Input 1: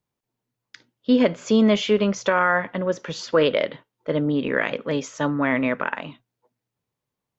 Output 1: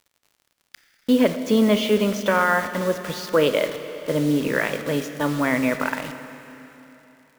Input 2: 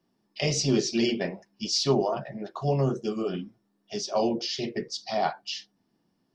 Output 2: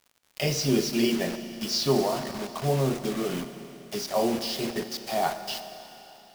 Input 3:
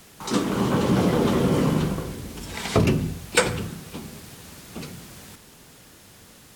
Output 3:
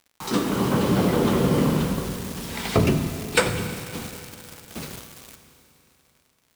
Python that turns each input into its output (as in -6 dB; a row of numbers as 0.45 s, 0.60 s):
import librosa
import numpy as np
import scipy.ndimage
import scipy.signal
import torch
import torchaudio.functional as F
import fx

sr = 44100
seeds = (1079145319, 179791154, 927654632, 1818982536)

y = fx.dynamic_eq(x, sr, hz=7000.0, q=1.9, threshold_db=-48.0, ratio=4.0, max_db=-4)
y = fx.quant_dither(y, sr, seeds[0], bits=6, dither='none')
y = fx.dmg_crackle(y, sr, seeds[1], per_s=89.0, level_db=-45.0)
y = fx.rev_schroeder(y, sr, rt60_s=3.3, comb_ms=27, drr_db=9.0)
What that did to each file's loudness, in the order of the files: +0.5 LU, +0.5 LU, 0.0 LU